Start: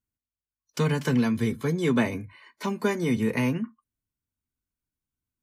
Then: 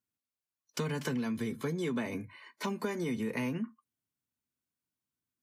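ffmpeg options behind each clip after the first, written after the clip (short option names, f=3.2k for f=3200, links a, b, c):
-filter_complex "[0:a]highpass=140,asplit=2[a][b];[b]alimiter=limit=-22.5dB:level=0:latency=1,volume=-1dB[c];[a][c]amix=inputs=2:normalize=0,acompressor=threshold=-24dB:ratio=6,volume=-6.5dB"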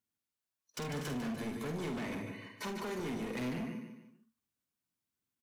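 -filter_complex "[0:a]asplit=2[a][b];[b]aecho=0:1:148|296|444|592:0.398|0.155|0.0606|0.0236[c];[a][c]amix=inputs=2:normalize=0,asoftclip=type=hard:threshold=-35.5dB,asplit=2[d][e];[e]aecho=0:1:48|75:0.447|0.188[f];[d][f]amix=inputs=2:normalize=0,volume=-1dB"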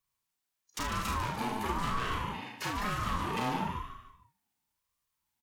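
-af "afreqshift=320,aecho=1:1:34|70:0.596|0.316,aeval=exprs='val(0)*sin(2*PI*440*n/s+440*0.3/1*sin(2*PI*1*n/s))':c=same,volume=7dB"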